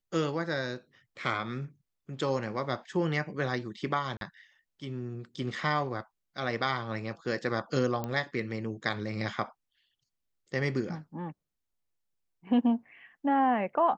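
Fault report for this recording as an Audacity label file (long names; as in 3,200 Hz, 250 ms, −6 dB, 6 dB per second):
4.170000	4.210000	drop-out 42 ms
8.040000	8.040000	click −20 dBFS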